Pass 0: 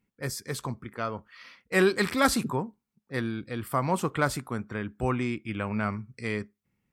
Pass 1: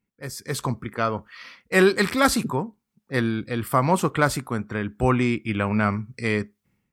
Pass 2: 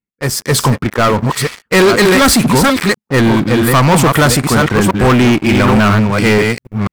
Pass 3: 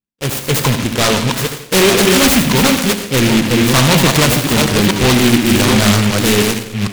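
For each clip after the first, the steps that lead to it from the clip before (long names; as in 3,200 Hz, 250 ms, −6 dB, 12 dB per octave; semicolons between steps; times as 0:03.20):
automatic gain control gain up to 12 dB; level −3.5 dB
delay that plays each chunk backwards 491 ms, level −6 dB; leveller curve on the samples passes 5
on a send at −5.5 dB: convolution reverb RT60 0.75 s, pre-delay 58 ms; on the sum: short delay modulated by noise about 2,400 Hz, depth 0.18 ms; level −2.5 dB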